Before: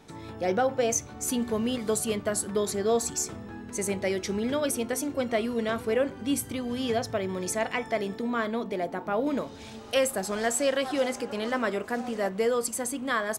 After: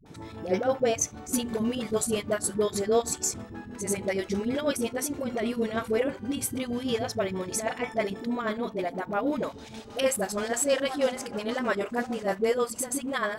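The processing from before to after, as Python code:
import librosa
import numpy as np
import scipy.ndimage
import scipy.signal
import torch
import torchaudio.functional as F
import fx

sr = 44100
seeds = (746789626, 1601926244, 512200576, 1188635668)

y = fx.chopper(x, sr, hz=6.3, depth_pct=65, duty_pct=65)
y = fx.dispersion(y, sr, late='highs', ms=60.0, hz=410.0)
y = y * 10.0 ** (1.5 / 20.0)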